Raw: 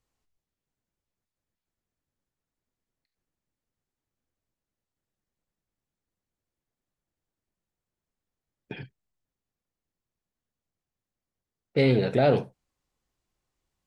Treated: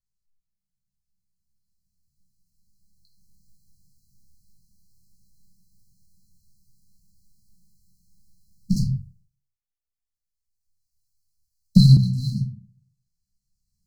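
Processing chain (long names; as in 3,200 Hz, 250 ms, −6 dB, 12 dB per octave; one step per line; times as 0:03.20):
camcorder AGC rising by 8.8 dB per second
leveller curve on the samples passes 2
linear-phase brick-wall band-stop 220–4,000 Hz
rectangular room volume 210 cubic metres, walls furnished, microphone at 1.6 metres
0:08.76–0:11.97: multiband upward and downward expander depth 100%
level −5.5 dB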